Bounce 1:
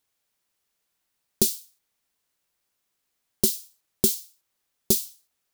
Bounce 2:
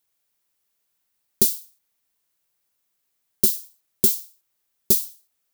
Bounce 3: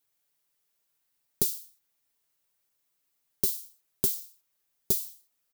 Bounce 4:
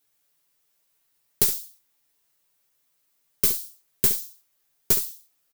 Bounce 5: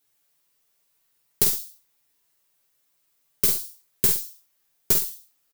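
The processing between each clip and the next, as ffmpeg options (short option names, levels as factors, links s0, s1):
-af "highshelf=f=11000:g=8.5,volume=0.841"
-af "aecho=1:1:7.1:0.65,acompressor=threshold=0.0891:ratio=2.5,volume=0.631"
-af "aeval=exprs='0.501*(cos(1*acos(clip(val(0)/0.501,-1,1)))-cos(1*PI/2))+0.0794*(cos(4*acos(clip(val(0)/0.501,-1,1)))-cos(4*PI/2))':c=same,aecho=1:1:14|68:0.501|0.282,volume=1.78"
-filter_complex "[0:a]asplit=2[s0][s1];[s1]adelay=48,volume=0.473[s2];[s0][s2]amix=inputs=2:normalize=0"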